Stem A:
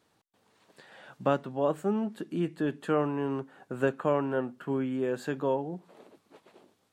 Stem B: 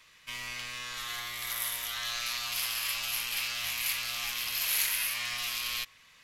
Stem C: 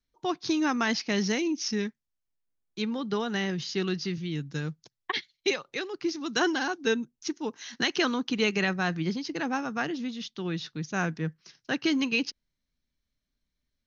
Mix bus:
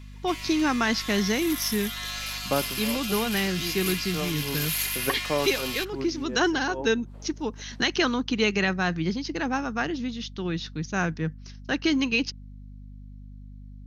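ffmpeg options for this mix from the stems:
-filter_complex "[0:a]adelay=1250,volume=1.06[s0];[1:a]aecho=1:1:2.9:0.69,volume=0.891[s1];[2:a]aeval=exprs='val(0)+0.00631*(sin(2*PI*50*n/s)+sin(2*PI*2*50*n/s)/2+sin(2*PI*3*50*n/s)/3+sin(2*PI*4*50*n/s)/4+sin(2*PI*5*50*n/s)/5)':c=same,volume=1.33,asplit=2[s2][s3];[s3]apad=whole_len=360735[s4];[s0][s4]sidechaincompress=threshold=0.0126:ratio=8:attack=16:release=117[s5];[s5][s1][s2]amix=inputs=3:normalize=0"

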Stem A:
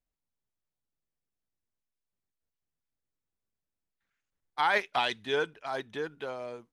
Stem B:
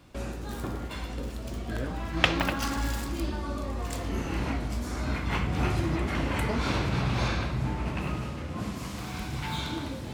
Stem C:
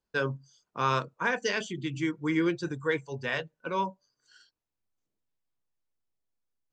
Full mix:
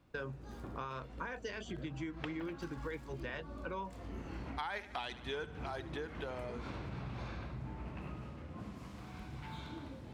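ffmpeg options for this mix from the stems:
-filter_complex "[0:a]volume=1.12,asplit=2[s0][s1];[s1]volume=0.133[s2];[1:a]highshelf=f=3600:g=-11,volume=0.251[s3];[2:a]highshelf=f=5100:g=-10,alimiter=limit=0.0891:level=0:latency=1:release=33,volume=0.75[s4];[s2]aecho=0:1:73|146|219|292|365|438|511:1|0.47|0.221|0.104|0.0488|0.0229|0.0108[s5];[s0][s3][s4][s5]amix=inputs=4:normalize=0,acompressor=threshold=0.0112:ratio=5"

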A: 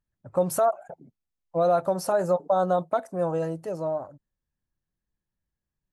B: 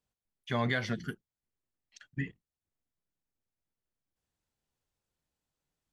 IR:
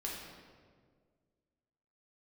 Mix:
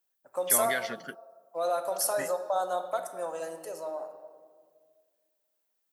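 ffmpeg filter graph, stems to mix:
-filter_complex "[0:a]aemphasis=mode=production:type=riaa,volume=0.398,asplit=2[s0][s1];[s1]volume=0.668[s2];[1:a]volume=1.12[s3];[2:a]atrim=start_sample=2205[s4];[s2][s4]afir=irnorm=-1:irlink=0[s5];[s0][s3][s5]amix=inputs=3:normalize=0,highpass=380"

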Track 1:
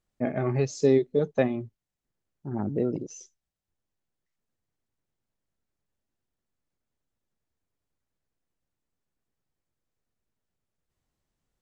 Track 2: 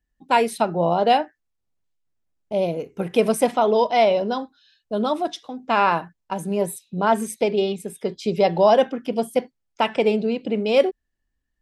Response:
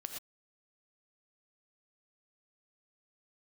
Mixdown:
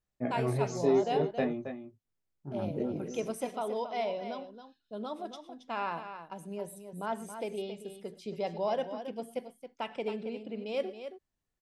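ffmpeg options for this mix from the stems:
-filter_complex "[0:a]flanger=delay=15.5:depth=5.7:speed=0.23,volume=0.668,asplit=2[s0][s1];[s1]volume=0.335[s2];[1:a]volume=0.126,asplit=3[s3][s4][s5];[s4]volume=0.335[s6];[s5]volume=0.398[s7];[2:a]atrim=start_sample=2205[s8];[s6][s8]afir=irnorm=-1:irlink=0[s9];[s2][s7]amix=inputs=2:normalize=0,aecho=0:1:273:1[s10];[s0][s3][s9][s10]amix=inputs=4:normalize=0"

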